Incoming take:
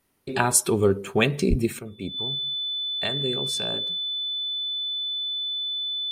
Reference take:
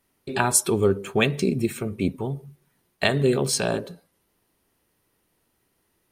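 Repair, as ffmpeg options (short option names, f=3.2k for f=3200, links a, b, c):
-filter_complex "[0:a]bandreject=f=3.5k:w=30,asplit=3[a][b][c];[a]afade=t=out:st=1.49:d=0.02[d];[b]highpass=f=140:w=0.5412,highpass=f=140:w=1.3066,afade=t=in:st=1.49:d=0.02,afade=t=out:st=1.61:d=0.02[e];[c]afade=t=in:st=1.61:d=0.02[f];[d][e][f]amix=inputs=3:normalize=0,asetnsamples=n=441:p=0,asendcmd='1.79 volume volume 9dB',volume=0dB"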